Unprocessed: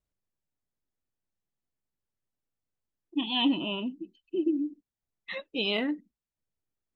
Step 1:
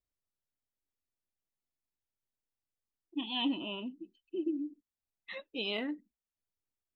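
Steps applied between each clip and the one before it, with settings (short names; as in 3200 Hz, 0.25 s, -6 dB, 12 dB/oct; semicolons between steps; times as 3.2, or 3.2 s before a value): bell 160 Hz -9.5 dB 0.33 oct; gain -6.5 dB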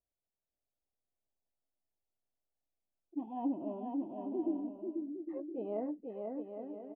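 ladder low-pass 810 Hz, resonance 50%; on a send: bouncing-ball echo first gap 0.49 s, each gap 0.65×, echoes 5; on the sum: gain +6.5 dB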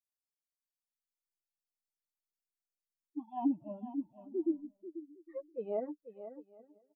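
per-bin expansion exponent 3; gain +6 dB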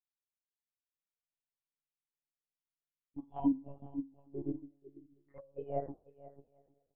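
de-hum 45.35 Hz, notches 33; monotone LPC vocoder at 8 kHz 140 Hz; upward expander 1.5:1, over -51 dBFS; gain +3 dB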